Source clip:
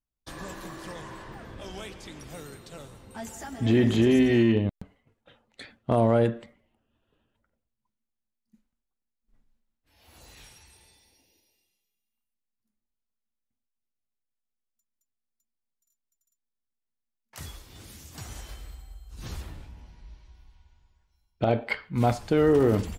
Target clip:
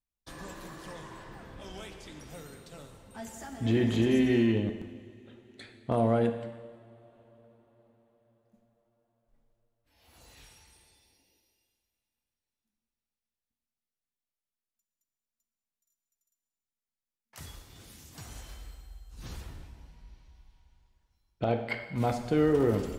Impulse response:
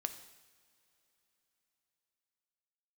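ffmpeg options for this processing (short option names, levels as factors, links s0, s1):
-filter_complex "[1:a]atrim=start_sample=2205,asetrate=33075,aresample=44100[s0];[0:a][s0]afir=irnorm=-1:irlink=0,volume=0.562"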